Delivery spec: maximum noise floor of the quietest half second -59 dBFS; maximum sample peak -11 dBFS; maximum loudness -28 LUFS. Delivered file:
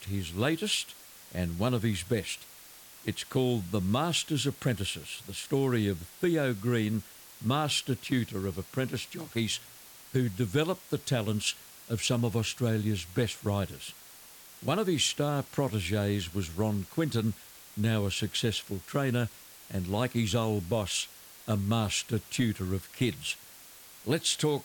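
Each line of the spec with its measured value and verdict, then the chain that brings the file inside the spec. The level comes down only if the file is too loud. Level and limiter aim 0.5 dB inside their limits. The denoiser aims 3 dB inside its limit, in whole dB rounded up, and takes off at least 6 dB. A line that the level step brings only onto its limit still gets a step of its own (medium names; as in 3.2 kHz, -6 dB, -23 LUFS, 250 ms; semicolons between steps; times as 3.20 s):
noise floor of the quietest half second -51 dBFS: fail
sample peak -17.0 dBFS: pass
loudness -31.0 LUFS: pass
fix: noise reduction 11 dB, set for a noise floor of -51 dBFS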